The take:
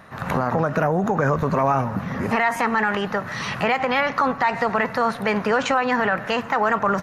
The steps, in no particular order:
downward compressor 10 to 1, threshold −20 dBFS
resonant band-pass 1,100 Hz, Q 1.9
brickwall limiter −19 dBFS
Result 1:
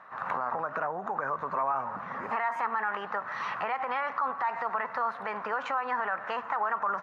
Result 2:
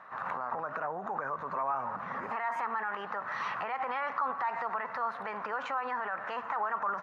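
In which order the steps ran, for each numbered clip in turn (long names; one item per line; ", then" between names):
downward compressor, then resonant band-pass, then brickwall limiter
downward compressor, then brickwall limiter, then resonant band-pass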